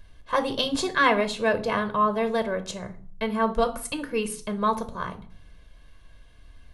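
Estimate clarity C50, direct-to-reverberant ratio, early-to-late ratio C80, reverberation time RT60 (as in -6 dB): 15.5 dB, 8.0 dB, 20.0 dB, 0.45 s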